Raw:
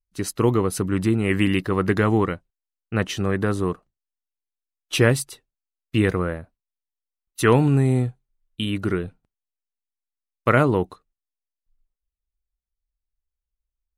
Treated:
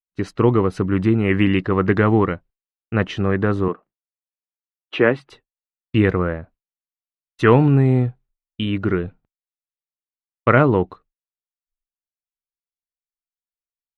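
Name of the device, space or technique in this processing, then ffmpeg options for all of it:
hearing-loss simulation: -filter_complex "[0:a]asettb=1/sr,asplit=3[link_01][link_02][link_03];[link_01]atrim=end=3.684[link_04];[link_02]atrim=start=3.68:end=5.3,asetpts=PTS-STARTPTS,afade=type=in:duration=0.004:curve=qsin,afade=type=out:start_time=1.616:duration=0.004:curve=qsin,acrossover=split=190 3400:gain=0.0891 1 0.126[link_05][link_06][link_07];[link_05][link_06][link_07]amix=inputs=3:normalize=0[link_08];[link_03]atrim=start=5.296[link_09];[link_04][link_08]acrossfade=duration=0.004:curve1=hsin:curve2=qsin[link_10];[link_10][link_09]acrossfade=duration=0.004:curve1=qsin:curve2=hsin,lowpass=2700,agate=range=-33dB:threshold=-47dB:ratio=3:detection=peak,volume=3.5dB"

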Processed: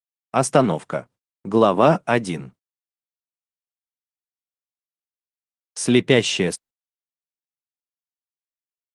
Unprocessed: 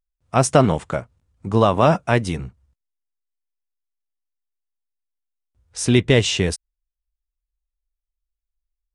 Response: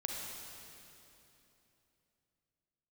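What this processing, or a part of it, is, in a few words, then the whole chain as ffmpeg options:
video call: -filter_complex "[0:a]asettb=1/sr,asplit=3[link_01][link_02][link_03];[link_01]atrim=end=1.484[link_04];[link_02]atrim=start=1.48:end=2.01,asetpts=PTS-STARTPTS,afade=type=in:duration=0.004:curve=qsin,afade=type=out:start_time=0.526:duration=0.004:curve=qsin,equalizer=frequency=350:width=1.7:gain=4.5[link_05];[link_03]atrim=start=2.006[link_06];[link_04][link_05]acrossfade=duration=0.004:curve1=hsin:curve2=qsin[link_07];[link_07][link_06]acrossfade=duration=0.004:curve1=qsin:curve2=hsin,highpass=frequency=150:width=0.5412,highpass=frequency=150:width=1.3066,dynaudnorm=framelen=590:gausssize=5:maxgain=15.5dB,agate=range=-58dB:threshold=-44dB:ratio=16:detection=peak,volume=-1dB" -ar 48000 -c:a libopus -b:a 24k

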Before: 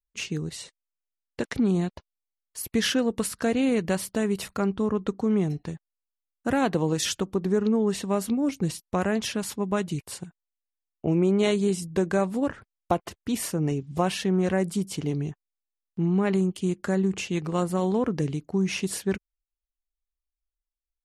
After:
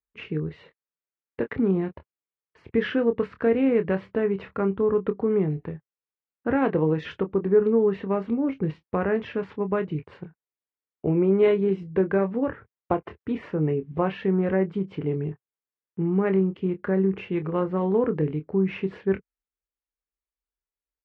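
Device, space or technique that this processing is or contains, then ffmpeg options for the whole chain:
bass cabinet: -filter_complex "[0:a]highpass=72,equalizer=frequency=130:width_type=q:width=4:gain=-3,equalizer=frequency=210:width_type=q:width=4:gain=-4,equalizer=frequency=440:width_type=q:width=4:gain=6,equalizer=frequency=700:width_type=q:width=4:gain=-4,lowpass=frequency=2300:width=0.5412,lowpass=frequency=2300:width=1.3066,lowshelf=frequency=180:gain=3,asplit=2[link_01][link_02];[link_02]adelay=26,volume=-9.5dB[link_03];[link_01][link_03]amix=inputs=2:normalize=0"

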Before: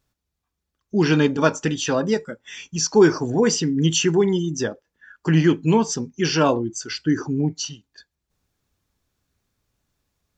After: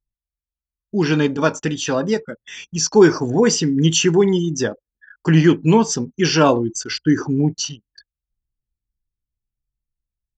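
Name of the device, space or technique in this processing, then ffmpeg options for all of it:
voice memo with heavy noise removal: -af "anlmdn=0.158,dynaudnorm=framelen=430:gausssize=11:maxgain=11.5dB"

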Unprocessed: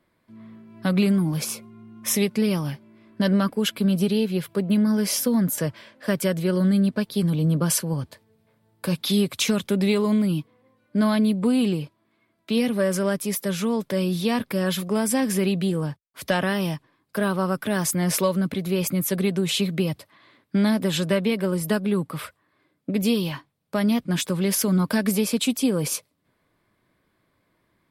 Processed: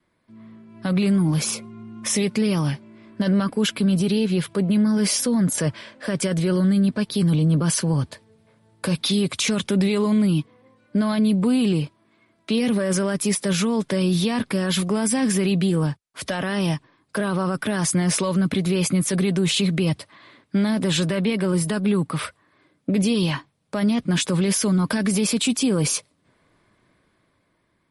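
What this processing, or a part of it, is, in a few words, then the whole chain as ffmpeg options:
low-bitrate web radio: -af "adynamicequalizer=threshold=0.00891:dfrequency=540:dqfactor=2.5:tfrequency=540:tqfactor=2.5:attack=5:release=100:ratio=0.375:range=2:mode=cutabove:tftype=bell,dynaudnorm=framelen=170:gausssize=13:maxgain=8dB,alimiter=limit=-13dB:level=0:latency=1:release=18" -ar 48000 -c:a libmp3lame -b:a 48k

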